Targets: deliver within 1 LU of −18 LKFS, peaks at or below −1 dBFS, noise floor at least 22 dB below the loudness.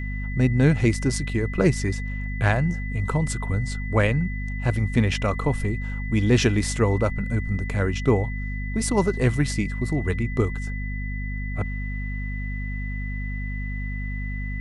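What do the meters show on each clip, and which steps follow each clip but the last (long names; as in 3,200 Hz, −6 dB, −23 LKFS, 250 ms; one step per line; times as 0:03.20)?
mains hum 50 Hz; hum harmonics up to 250 Hz; level of the hum −26 dBFS; interfering tone 2,000 Hz; level of the tone −36 dBFS; integrated loudness −25.0 LKFS; sample peak −5.5 dBFS; target loudness −18.0 LKFS
→ mains-hum notches 50/100/150/200/250 Hz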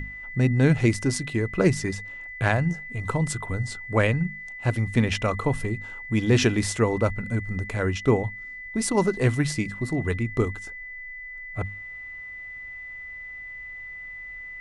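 mains hum none found; interfering tone 2,000 Hz; level of the tone −36 dBFS
→ notch filter 2,000 Hz, Q 30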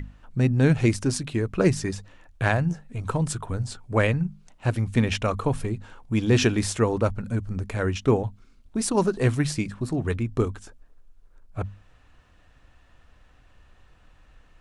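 interfering tone none found; integrated loudness −25.5 LKFS; sample peak −6.5 dBFS; target loudness −18.0 LKFS
→ level +7.5 dB
brickwall limiter −1 dBFS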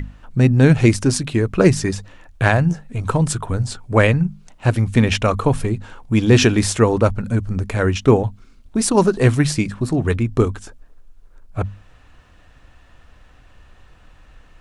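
integrated loudness −18.0 LKFS; sample peak −1.0 dBFS; background noise floor −49 dBFS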